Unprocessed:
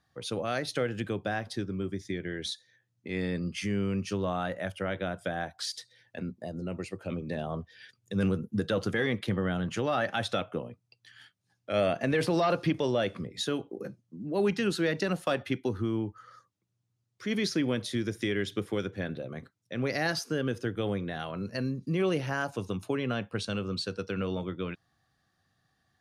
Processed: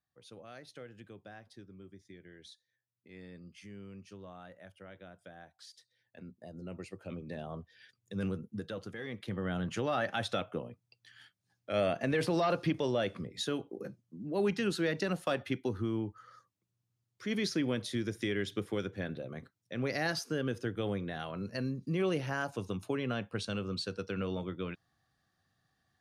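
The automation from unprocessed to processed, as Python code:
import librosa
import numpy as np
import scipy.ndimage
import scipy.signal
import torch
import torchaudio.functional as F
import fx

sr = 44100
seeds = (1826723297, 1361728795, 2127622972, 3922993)

y = fx.gain(x, sr, db=fx.line((5.7, -18.5), (6.73, -7.5), (8.36, -7.5), (8.97, -14.5), (9.57, -3.5)))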